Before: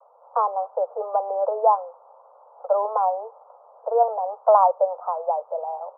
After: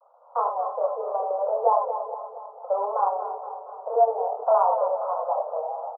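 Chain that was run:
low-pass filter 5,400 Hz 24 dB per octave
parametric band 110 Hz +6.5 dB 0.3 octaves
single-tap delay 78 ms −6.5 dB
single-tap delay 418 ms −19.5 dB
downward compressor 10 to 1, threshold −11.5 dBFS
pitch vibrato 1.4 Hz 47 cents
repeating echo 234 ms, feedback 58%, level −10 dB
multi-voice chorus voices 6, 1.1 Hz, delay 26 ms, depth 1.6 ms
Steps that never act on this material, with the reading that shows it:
low-pass filter 5,400 Hz: nothing at its input above 1,400 Hz
parametric band 110 Hz: nothing at its input below 380 Hz

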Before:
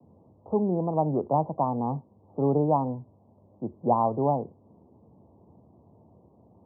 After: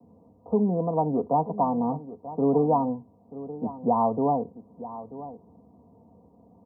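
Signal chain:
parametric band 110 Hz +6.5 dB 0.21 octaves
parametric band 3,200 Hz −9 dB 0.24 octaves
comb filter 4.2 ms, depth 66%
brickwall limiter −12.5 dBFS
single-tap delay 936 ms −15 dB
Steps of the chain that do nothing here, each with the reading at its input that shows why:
parametric band 3,200 Hz: nothing at its input above 1,200 Hz

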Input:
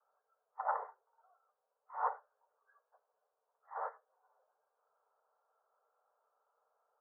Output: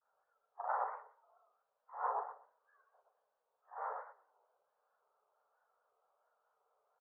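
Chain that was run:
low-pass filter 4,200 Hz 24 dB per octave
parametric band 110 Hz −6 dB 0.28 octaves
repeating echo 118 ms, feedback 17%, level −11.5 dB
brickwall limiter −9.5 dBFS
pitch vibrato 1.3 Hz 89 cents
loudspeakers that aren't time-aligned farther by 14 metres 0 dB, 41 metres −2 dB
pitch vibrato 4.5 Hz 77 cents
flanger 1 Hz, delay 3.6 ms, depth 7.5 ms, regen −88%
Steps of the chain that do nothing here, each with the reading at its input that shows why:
low-pass filter 4,200 Hz: nothing at its input above 1,900 Hz
parametric band 110 Hz: nothing at its input below 380 Hz
brickwall limiter −9.5 dBFS: peak of its input −21.5 dBFS

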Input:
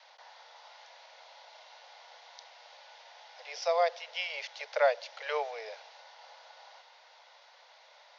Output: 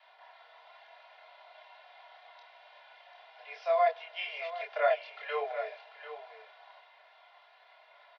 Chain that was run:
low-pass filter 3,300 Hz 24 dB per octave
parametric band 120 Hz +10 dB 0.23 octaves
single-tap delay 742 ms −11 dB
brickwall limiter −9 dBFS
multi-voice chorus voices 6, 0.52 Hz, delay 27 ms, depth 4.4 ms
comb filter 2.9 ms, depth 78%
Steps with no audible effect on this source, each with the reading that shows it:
parametric band 120 Hz: nothing at its input below 400 Hz
brickwall limiter −9 dBFS: peak of its input −12.0 dBFS

